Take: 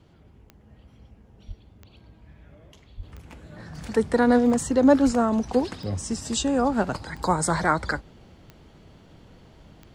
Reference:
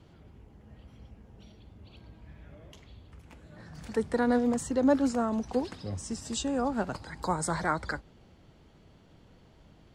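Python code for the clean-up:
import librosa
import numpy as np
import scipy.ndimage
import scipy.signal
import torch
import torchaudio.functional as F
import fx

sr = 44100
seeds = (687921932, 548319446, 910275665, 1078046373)

y = fx.fix_declick_ar(x, sr, threshold=10.0)
y = fx.fix_deplosive(y, sr, at_s=(1.47, 2.96, 5.05))
y = fx.gain(y, sr, db=fx.steps((0.0, 0.0), (3.03, -7.0)))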